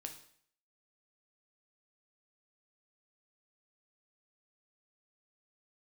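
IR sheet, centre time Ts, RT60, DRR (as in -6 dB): 15 ms, 0.60 s, 4.0 dB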